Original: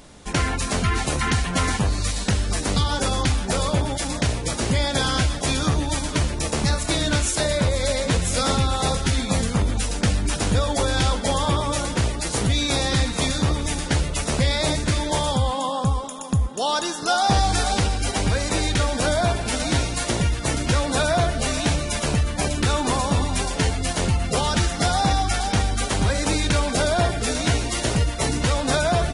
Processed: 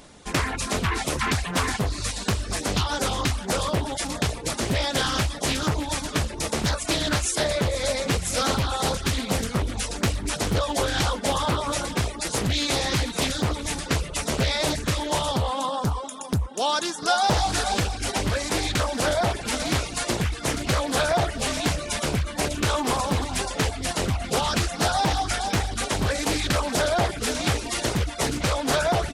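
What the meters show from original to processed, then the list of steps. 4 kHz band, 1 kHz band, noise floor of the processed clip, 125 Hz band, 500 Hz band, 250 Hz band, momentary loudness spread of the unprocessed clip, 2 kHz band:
-1.5 dB, -1.5 dB, -35 dBFS, -5.0 dB, -1.5 dB, -3.0 dB, 3 LU, -1.0 dB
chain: reverb removal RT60 0.59 s; low shelf 150 Hz -5.5 dB; Doppler distortion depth 0.6 ms

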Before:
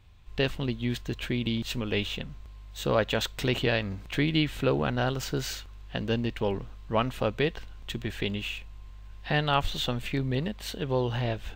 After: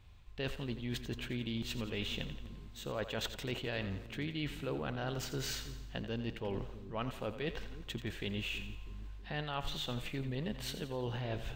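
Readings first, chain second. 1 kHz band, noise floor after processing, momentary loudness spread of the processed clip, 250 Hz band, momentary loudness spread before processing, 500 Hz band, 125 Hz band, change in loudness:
-12.0 dB, -49 dBFS, 6 LU, -10.0 dB, 12 LU, -11.5 dB, -9.5 dB, -10.0 dB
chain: reverse; compressor, threshold -33 dBFS, peak gain reduction 13 dB; reverse; split-band echo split 370 Hz, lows 0.323 s, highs 86 ms, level -11 dB; gain -2.5 dB

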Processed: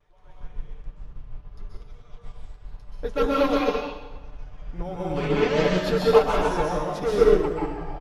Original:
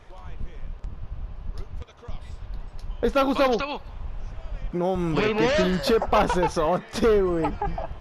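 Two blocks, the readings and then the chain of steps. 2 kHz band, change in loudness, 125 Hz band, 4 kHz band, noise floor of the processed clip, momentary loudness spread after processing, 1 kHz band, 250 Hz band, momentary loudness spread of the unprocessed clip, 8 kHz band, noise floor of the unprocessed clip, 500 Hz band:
-1.5 dB, +0.5 dB, -1.5 dB, -2.0 dB, -49 dBFS, 18 LU, -2.0 dB, -1.5 dB, 20 LU, n/a, -45 dBFS, +1.5 dB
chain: comb 6.8 ms, depth 48%; flange 0.79 Hz, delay 1.9 ms, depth 5.1 ms, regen -70%; vibrato 0.35 Hz 13 cents; plate-style reverb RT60 1.3 s, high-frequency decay 0.8×, pre-delay 0.115 s, DRR -4.5 dB; upward expander 1.5:1, over -39 dBFS

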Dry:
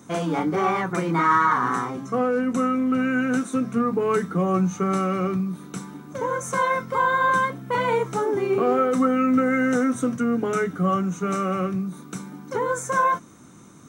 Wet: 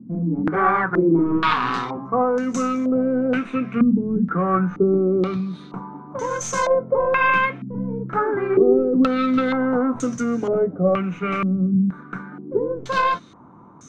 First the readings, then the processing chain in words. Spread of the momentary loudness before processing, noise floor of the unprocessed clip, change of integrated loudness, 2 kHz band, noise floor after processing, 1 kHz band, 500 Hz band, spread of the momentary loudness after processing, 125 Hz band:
8 LU, -46 dBFS, +2.0 dB, +1.5 dB, -43 dBFS, -0.5 dB, +3.5 dB, 10 LU, +3.0 dB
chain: tracing distortion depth 0.093 ms; stepped low-pass 2.1 Hz 230–6400 Hz

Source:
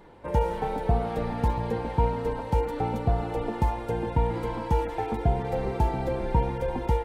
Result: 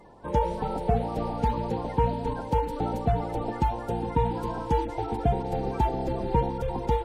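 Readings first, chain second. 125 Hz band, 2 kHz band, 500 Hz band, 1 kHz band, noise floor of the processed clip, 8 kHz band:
-1.5 dB, -3.0 dB, -0.5 dB, +1.5 dB, -37 dBFS, n/a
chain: bin magnitudes rounded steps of 30 dB

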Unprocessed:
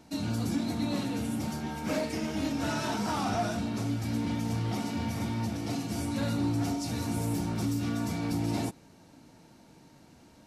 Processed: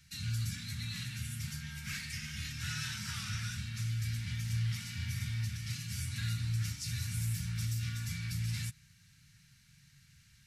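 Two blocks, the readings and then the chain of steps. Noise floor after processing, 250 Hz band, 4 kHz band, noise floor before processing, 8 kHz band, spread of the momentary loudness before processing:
-63 dBFS, -17.5 dB, -1.0 dB, -57 dBFS, -0.5 dB, 3 LU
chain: elliptic band-stop 140–1700 Hz, stop band 70 dB

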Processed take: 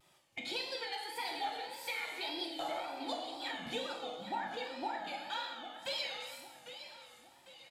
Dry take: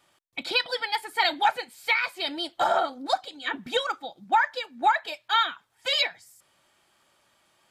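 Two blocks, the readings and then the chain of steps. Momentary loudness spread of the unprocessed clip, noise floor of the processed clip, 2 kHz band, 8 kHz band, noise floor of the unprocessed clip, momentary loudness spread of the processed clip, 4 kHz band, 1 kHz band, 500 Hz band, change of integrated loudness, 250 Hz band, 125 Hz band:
9 LU, -64 dBFS, -14.5 dB, -6.0 dB, -69 dBFS, 11 LU, -11.5 dB, -14.5 dB, -11.0 dB, -13.5 dB, -6.5 dB, n/a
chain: resonator 65 Hz, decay 1.1 s, harmonics all, mix 60%; compressor 4:1, threshold -43 dBFS, peak gain reduction 17 dB; soft clip -31 dBFS, distortion -26 dB; bell 1400 Hz -6.5 dB 0.63 oct; on a send: feedback echo 0.803 s, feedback 43%, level -11.5 dB; on the sum: non-linear reverb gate 0.43 s falling, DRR -0.5 dB; wow and flutter 97 cents; gain +3.5 dB

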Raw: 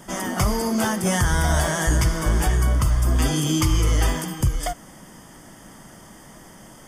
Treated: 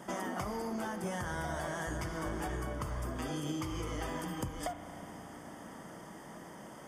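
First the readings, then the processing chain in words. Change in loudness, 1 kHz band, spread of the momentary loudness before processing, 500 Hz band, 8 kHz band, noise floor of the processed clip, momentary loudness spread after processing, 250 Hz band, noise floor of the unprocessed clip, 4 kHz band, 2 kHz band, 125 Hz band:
-17.5 dB, -11.5 dB, 4 LU, -11.0 dB, -20.0 dB, -50 dBFS, 11 LU, -13.5 dB, -46 dBFS, -17.5 dB, -13.5 dB, -19.5 dB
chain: HPF 300 Hz 6 dB/oct; high shelf 2200 Hz -11.5 dB; compressor 6:1, threshold -35 dBFS, peak gain reduction 12.5 dB; spring tank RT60 4 s, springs 34 ms, chirp 75 ms, DRR 8.5 dB

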